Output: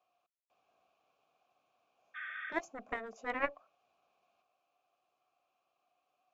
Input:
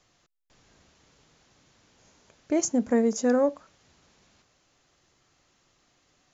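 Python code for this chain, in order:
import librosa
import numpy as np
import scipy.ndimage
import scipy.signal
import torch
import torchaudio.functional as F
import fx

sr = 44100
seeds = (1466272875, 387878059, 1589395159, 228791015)

y = fx.vowel_filter(x, sr, vowel='a')
y = fx.cheby_harmonics(y, sr, harmonics=(3, 8), levels_db=(-7, -43), full_scale_db=-25.0)
y = fx.spec_repair(y, sr, seeds[0], start_s=2.18, length_s=0.31, low_hz=1100.0, high_hz=3600.0, source='after')
y = F.gain(torch.from_numpy(y), 8.5).numpy()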